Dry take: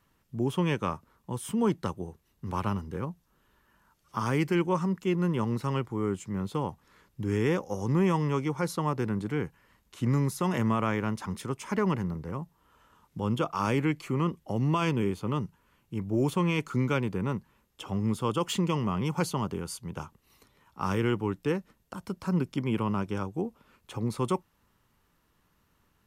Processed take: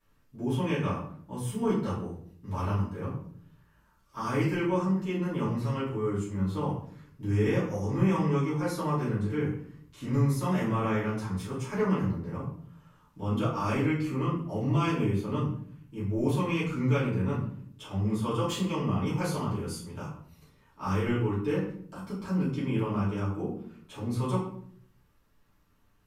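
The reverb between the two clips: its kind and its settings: shoebox room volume 78 m³, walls mixed, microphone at 2.7 m; gain -12.5 dB

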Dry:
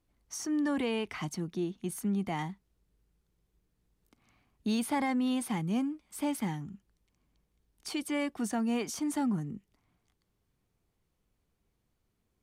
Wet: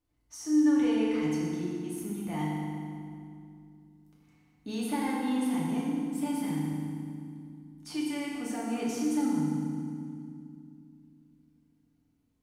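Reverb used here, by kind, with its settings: FDN reverb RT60 2.3 s, low-frequency decay 1.55×, high-frequency decay 0.8×, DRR -6 dB; gain -8 dB

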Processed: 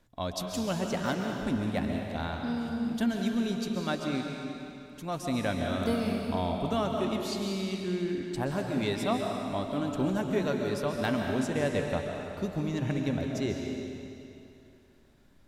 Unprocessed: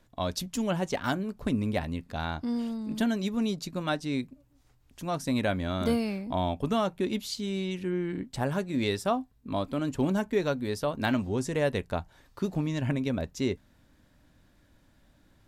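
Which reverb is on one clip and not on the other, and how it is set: digital reverb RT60 2.7 s, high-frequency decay 0.95×, pre-delay 95 ms, DRR 1.5 dB; gain -3 dB

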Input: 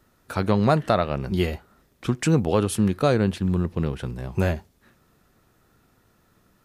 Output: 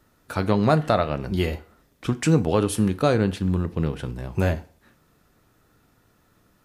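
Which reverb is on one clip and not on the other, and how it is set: FDN reverb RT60 0.47 s, low-frequency decay 0.9×, high-frequency decay 0.85×, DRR 11.5 dB

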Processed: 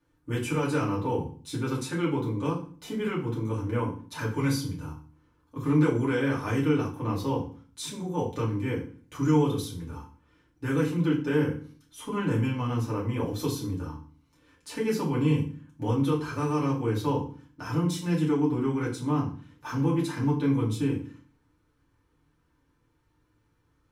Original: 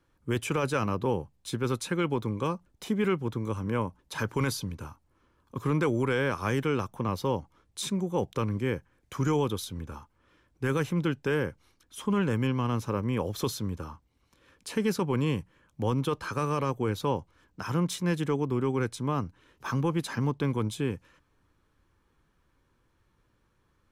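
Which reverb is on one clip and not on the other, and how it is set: FDN reverb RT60 0.42 s, low-frequency decay 1.5×, high-frequency decay 0.9×, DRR -6 dB; gain -8 dB

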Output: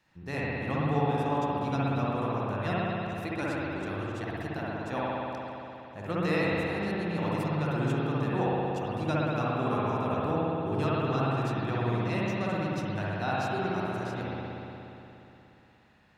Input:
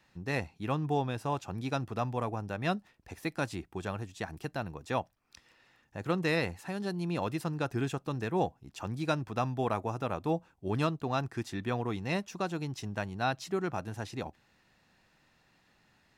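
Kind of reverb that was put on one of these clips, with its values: spring tank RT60 3.2 s, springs 59 ms, chirp 75 ms, DRR -7.5 dB; gain -4.5 dB

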